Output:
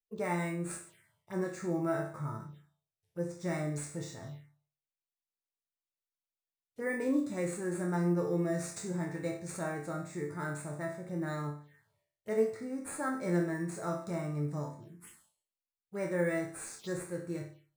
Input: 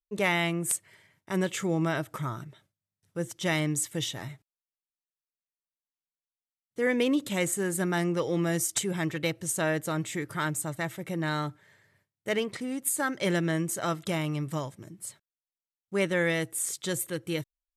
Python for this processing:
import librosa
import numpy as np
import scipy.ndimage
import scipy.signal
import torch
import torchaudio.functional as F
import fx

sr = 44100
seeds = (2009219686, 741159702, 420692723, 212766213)

p1 = fx.resonator_bank(x, sr, root=38, chord='minor', decay_s=0.48)
p2 = fx.sample_hold(p1, sr, seeds[0], rate_hz=11000.0, jitter_pct=0)
p3 = p1 + (p2 * librosa.db_to_amplitude(-4.0))
p4 = fx.env_phaser(p3, sr, low_hz=200.0, high_hz=3100.0, full_db=-43.0)
y = fx.hpss(p4, sr, part='harmonic', gain_db=6)